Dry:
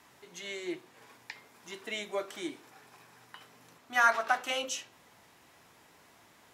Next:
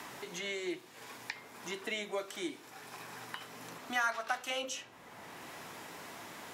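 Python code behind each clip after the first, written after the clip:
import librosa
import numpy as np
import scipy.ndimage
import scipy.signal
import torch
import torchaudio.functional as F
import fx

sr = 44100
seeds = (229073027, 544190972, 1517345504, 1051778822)

y = fx.band_squash(x, sr, depth_pct=70)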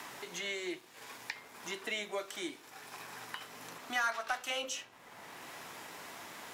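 y = fx.low_shelf(x, sr, hz=470.0, db=-5.5)
y = fx.leveller(y, sr, passes=1)
y = y * librosa.db_to_amplitude(-2.5)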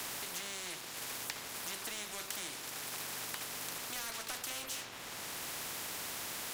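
y = fx.spectral_comp(x, sr, ratio=4.0)
y = y * librosa.db_to_amplitude(3.0)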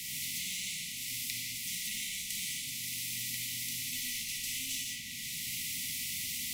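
y = fx.brickwall_bandstop(x, sr, low_hz=270.0, high_hz=1900.0)
y = fx.rev_gated(y, sr, seeds[0], gate_ms=230, shape='flat', drr_db=-3.5)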